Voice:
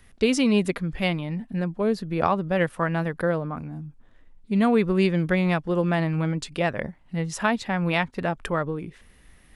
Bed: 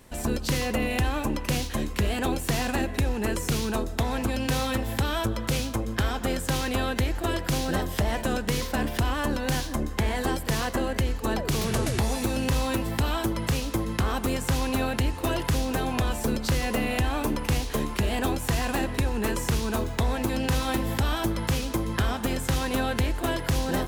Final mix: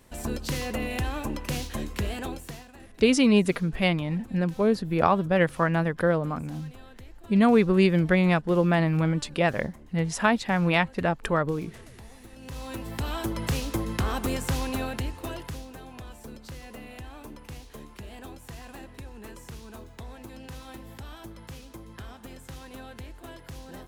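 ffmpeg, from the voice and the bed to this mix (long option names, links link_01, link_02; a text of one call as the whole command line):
ffmpeg -i stem1.wav -i stem2.wav -filter_complex "[0:a]adelay=2800,volume=1dB[link_01];[1:a]volume=17dB,afade=type=out:start_time=2.03:duration=0.63:silence=0.11885,afade=type=in:start_time=12.34:duration=1.16:silence=0.0891251,afade=type=out:start_time=14.38:duration=1.34:silence=0.177828[link_02];[link_01][link_02]amix=inputs=2:normalize=0" out.wav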